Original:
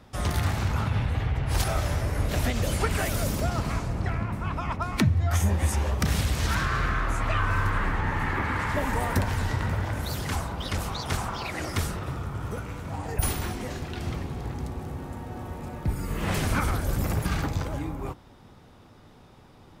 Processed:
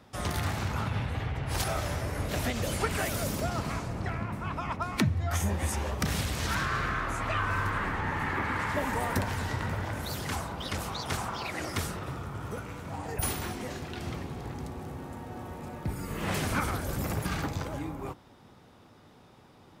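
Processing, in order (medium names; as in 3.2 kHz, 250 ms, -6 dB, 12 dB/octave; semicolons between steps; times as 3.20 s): high-pass 120 Hz 6 dB/octave; trim -2 dB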